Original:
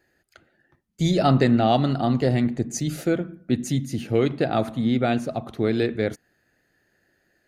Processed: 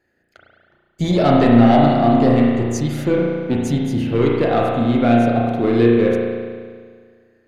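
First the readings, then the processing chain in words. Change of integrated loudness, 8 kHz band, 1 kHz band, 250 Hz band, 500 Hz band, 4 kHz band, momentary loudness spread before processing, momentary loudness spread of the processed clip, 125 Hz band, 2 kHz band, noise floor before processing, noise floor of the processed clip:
+7.0 dB, -1.0 dB, +7.5 dB, +8.0 dB, +7.5 dB, +2.0 dB, 9 LU, 9 LU, +4.5 dB, +5.5 dB, -69 dBFS, -64 dBFS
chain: in parallel at -5 dB: hard clip -17 dBFS, distortion -12 dB; on the sum: sample leveller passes 1; high shelf 4400 Hz -7 dB; spring tank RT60 1.8 s, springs 34 ms, chirp 70 ms, DRR -2.5 dB; gain -3.5 dB

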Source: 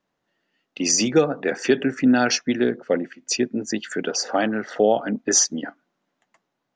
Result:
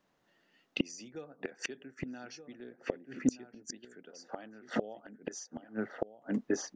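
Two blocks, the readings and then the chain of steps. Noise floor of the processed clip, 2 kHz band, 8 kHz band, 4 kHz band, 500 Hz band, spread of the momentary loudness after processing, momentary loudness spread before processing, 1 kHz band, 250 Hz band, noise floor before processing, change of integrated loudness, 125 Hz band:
-75 dBFS, -16.5 dB, -23.5 dB, -20.0 dB, -18.0 dB, 14 LU, 9 LU, -20.0 dB, -14.5 dB, -78 dBFS, -18.5 dB, -13.5 dB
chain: outdoor echo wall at 210 m, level -9 dB; flipped gate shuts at -18 dBFS, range -30 dB; gain +2 dB

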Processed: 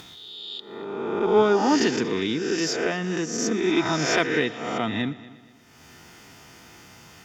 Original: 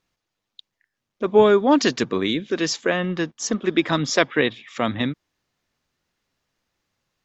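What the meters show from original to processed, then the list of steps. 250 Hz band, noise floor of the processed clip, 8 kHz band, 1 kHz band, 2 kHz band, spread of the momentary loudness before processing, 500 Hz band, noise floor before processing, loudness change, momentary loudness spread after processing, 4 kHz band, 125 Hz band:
-2.0 dB, -52 dBFS, n/a, -1.5 dB, -1.5 dB, 11 LU, -3.0 dB, -82 dBFS, -3.0 dB, 15 LU, -2.0 dB, -3.0 dB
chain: spectral swells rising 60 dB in 0.94 s; HPF 59 Hz; notch 4000 Hz, Q 6.1; upward compressor, threshold -17 dBFS; added harmonics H 8 -37 dB, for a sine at 1 dBFS; notch comb 560 Hz; on a send: multi-head echo 0.119 s, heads first and second, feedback 45%, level -21 dB; on the sum: gain -4.5 dB

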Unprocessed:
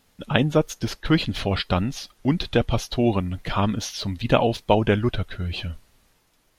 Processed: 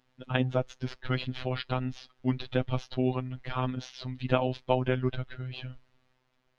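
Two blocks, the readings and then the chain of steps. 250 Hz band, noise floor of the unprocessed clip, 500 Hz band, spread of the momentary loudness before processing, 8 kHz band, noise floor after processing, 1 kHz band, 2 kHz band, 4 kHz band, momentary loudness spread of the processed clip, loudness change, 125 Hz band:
-9.0 dB, -64 dBFS, -7.5 dB, 9 LU, under -15 dB, -73 dBFS, -8.5 dB, -8.5 dB, -11.0 dB, 10 LU, -8.0 dB, -6.5 dB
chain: LPF 3400 Hz 12 dB/oct; robotiser 128 Hz; gain -5.5 dB

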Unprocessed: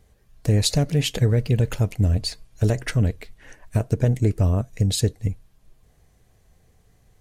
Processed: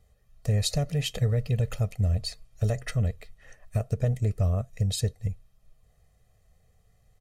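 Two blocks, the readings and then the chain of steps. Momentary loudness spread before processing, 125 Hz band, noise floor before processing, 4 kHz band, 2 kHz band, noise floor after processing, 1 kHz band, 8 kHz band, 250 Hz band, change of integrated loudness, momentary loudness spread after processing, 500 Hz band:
9 LU, -5.5 dB, -60 dBFS, -6.5 dB, -7.0 dB, -65 dBFS, -5.5 dB, -6.5 dB, -9.5 dB, -6.0 dB, 9 LU, -7.0 dB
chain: comb 1.6 ms, depth 70%; gain -8.5 dB

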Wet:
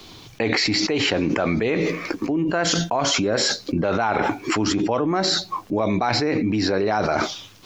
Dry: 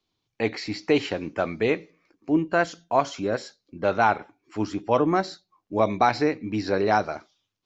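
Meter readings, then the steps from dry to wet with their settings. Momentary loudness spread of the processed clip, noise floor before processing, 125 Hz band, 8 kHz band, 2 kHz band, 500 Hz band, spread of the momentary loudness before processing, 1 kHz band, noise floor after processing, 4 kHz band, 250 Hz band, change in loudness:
4 LU, -81 dBFS, +6.5 dB, n/a, +4.0 dB, +1.5 dB, 10 LU, 0.0 dB, -46 dBFS, +14.0 dB, +5.0 dB, +3.5 dB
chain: fast leveller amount 100%; gain -4.5 dB

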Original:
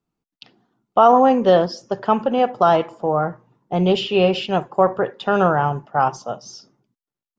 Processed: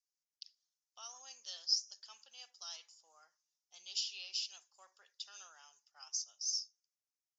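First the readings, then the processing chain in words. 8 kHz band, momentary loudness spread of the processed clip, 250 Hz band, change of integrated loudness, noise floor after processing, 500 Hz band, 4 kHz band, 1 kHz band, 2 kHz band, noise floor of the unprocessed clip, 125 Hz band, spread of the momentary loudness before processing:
n/a, 22 LU, under -40 dB, -21.5 dB, under -85 dBFS, under -40 dB, -9.0 dB, under -40 dB, -28.5 dB, under -85 dBFS, under -40 dB, 11 LU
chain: Butterworth band-pass 5800 Hz, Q 2.9; gain +4 dB

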